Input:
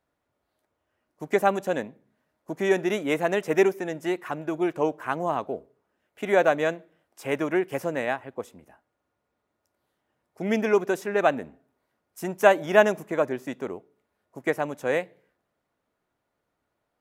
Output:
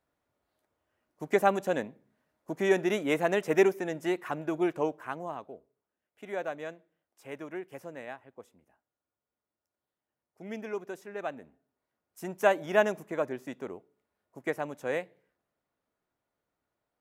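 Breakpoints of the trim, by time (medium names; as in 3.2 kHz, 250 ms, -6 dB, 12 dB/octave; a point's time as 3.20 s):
4.66 s -2.5 dB
5.54 s -14.5 dB
11.33 s -14.5 dB
12.32 s -6.5 dB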